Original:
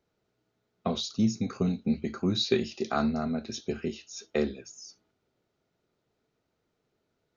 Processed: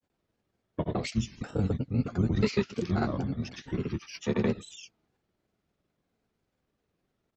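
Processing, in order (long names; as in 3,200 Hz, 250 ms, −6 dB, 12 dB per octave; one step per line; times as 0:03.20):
pitch-shifted copies added −12 semitones 0 dB
granular cloud 100 ms, pitch spread up and down by 3 semitones
wow of a warped record 33 1/3 rpm, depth 100 cents
level −2.5 dB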